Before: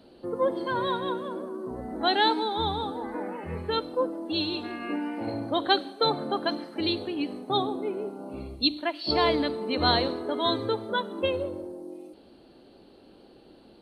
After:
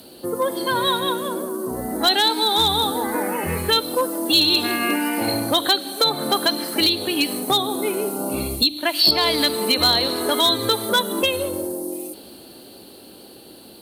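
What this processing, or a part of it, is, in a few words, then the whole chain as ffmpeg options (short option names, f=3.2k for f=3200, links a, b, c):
FM broadcast chain: -filter_complex "[0:a]highpass=65,dynaudnorm=f=270:g=21:m=11.5dB,acrossover=split=960|4500[a][b][c];[a]acompressor=threshold=-30dB:ratio=4[d];[b]acompressor=threshold=-31dB:ratio=4[e];[c]acompressor=threshold=-40dB:ratio=4[f];[d][e][f]amix=inputs=3:normalize=0,aemphasis=mode=production:type=50fm,alimiter=limit=-17dB:level=0:latency=1:release=358,asoftclip=type=hard:threshold=-20.5dB,lowpass=f=15k:w=0.5412,lowpass=f=15k:w=1.3066,aemphasis=mode=production:type=50fm,volume=8.5dB"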